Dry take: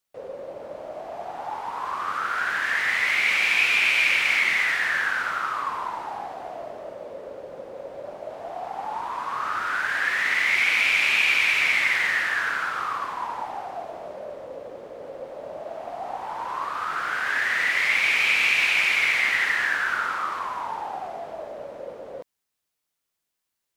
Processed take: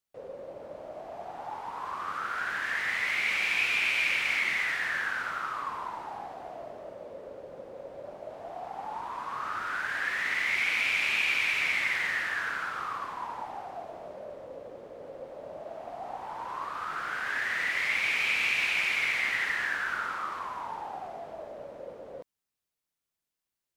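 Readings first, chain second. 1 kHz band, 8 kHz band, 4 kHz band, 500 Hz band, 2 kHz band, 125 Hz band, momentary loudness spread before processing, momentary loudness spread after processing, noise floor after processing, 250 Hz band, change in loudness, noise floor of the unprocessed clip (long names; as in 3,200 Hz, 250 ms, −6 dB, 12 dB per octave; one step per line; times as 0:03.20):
−6.5 dB, −7.0 dB, −7.0 dB, −6.0 dB, −7.0 dB, can't be measured, 20 LU, 19 LU, below −85 dBFS, −4.5 dB, −7.0 dB, −81 dBFS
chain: low-shelf EQ 300 Hz +5 dB
level −7 dB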